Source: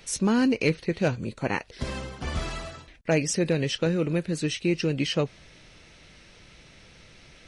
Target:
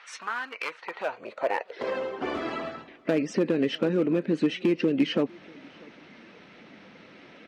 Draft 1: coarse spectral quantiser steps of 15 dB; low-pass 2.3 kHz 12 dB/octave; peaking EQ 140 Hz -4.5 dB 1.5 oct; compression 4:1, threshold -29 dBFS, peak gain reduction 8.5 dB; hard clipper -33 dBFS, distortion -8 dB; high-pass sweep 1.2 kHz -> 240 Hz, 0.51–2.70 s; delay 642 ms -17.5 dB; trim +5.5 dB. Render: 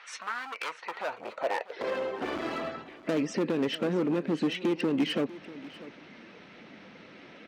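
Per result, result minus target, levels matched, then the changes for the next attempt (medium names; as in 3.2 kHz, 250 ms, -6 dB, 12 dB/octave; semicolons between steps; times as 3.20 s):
hard clipper: distortion +9 dB; echo-to-direct +8.5 dB
change: hard clipper -26.5 dBFS, distortion -17 dB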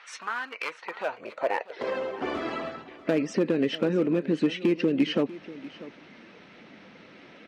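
echo-to-direct +8.5 dB
change: delay 642 ms -26 dB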